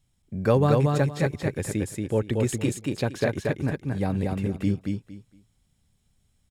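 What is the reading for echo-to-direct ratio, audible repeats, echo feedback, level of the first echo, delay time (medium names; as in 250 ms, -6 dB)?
-3.0 dB, 3, 21%, -3.0 dB, 231 ms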